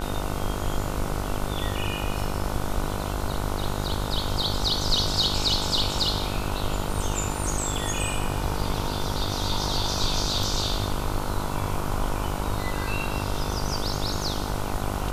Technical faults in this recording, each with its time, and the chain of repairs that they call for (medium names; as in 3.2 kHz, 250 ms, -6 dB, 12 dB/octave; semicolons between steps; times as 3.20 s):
buzz 50 Hz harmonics 30 -31 dBFS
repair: de-hum 50 Hz, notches 30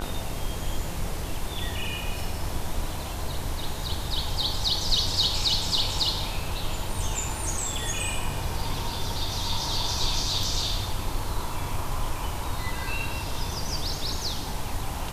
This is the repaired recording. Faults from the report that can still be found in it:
nothing left